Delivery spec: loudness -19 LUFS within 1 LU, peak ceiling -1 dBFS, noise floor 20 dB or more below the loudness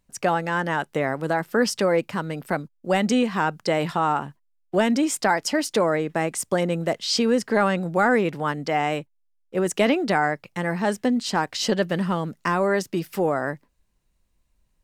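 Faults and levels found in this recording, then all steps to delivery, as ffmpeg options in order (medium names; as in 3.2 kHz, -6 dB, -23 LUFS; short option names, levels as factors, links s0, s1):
loudness -23.5 LUFS; peak level -7.5 dBFS; loudness target -19.0 LUFS
-> -af "volume=1.68"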